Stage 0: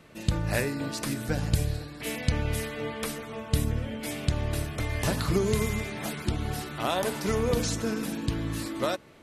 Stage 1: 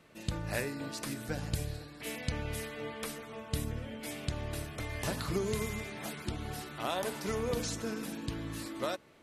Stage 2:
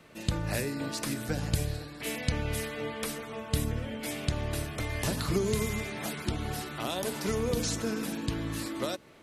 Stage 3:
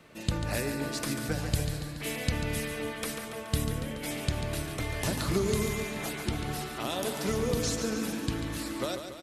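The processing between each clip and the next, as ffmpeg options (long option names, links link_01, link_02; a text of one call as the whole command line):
ffmpeg -i in.wav -af "lowshelf=frequency=200:gain=-4.5,volume=-6dB" out.wav
ffmpeg -i in.wav -filter_complex "[0:a]acrossover=split=440|3000[link_01][link_02][link_03];[link_02]acompressor=threshold=-41dB:ratio=6[link_04];[link_01][link_04][link_03]amix=inputs=3:normalize=0,volume=5.5dB" out.wav
ffmpeg -i in.wav -af "aecho=1:1:142|284|426|568|710|852|994:0.398|0.231|0.134|0.0777|0.0451|0.0261|0.0152" out.wav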